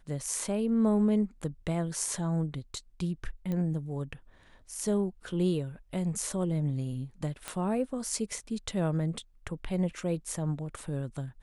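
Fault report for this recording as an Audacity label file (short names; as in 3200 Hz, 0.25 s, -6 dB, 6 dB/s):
3.520000	3.520000	pop -23 dBFS
7.480000	7.480000	pop -18 dBFS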